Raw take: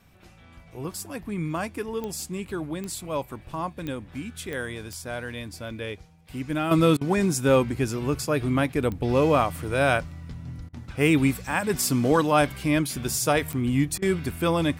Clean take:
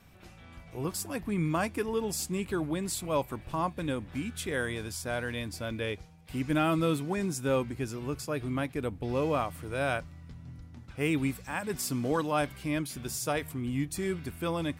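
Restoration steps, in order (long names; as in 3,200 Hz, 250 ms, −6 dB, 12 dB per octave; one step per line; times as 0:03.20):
click removal
repair the gap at 0:06.97/0:10.69/0:13.98, 41 ms
level 0 dB, from 0:06.71 −8.5 dB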